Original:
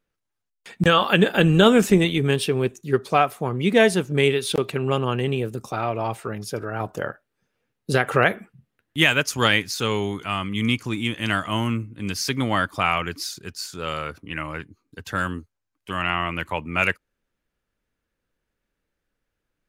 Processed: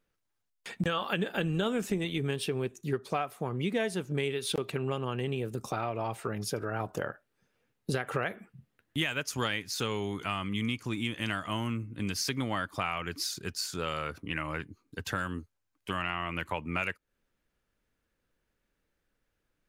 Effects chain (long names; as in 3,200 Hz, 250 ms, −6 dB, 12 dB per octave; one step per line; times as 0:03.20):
downward compressor 4 to 1, threshold −30 dBFS, peak gain reduction 16.5 dB